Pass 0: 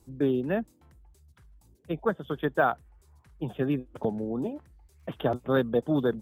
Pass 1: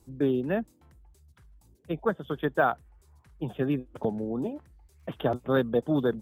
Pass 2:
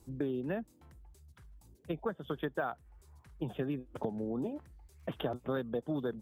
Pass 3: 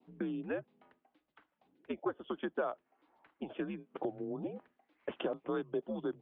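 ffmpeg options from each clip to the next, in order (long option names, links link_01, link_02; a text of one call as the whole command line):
ffmpeg -i in.wav -af anull out.wav
ffmpeg -i in.wav -af "acompressor=threshold=-33dB:ratio=4" out.wav
ffmpeg -i in.wav -af "highpass=frequency=360:width_type=q:width=0.5412,highpass=frequency=360:width_type=q:width=1.307,lowpass=frequency=3300:width_type=q:width=0.5176,lowpass=frequency=3300:width_type=q:width=0.7071,lowpass=frequency=3300:width_type=q:width=1.932,afreqshift=-90,adynamicequalizer=threshold=0.00141:dfrequency=1500:dqfactor=1.3:tfrequency=1500:tqfactor=1.3:attack=5:release=100:ratio=0.375:range=2.5:mode=cutabove:tftype=bell,volume=1.5dB" out.wav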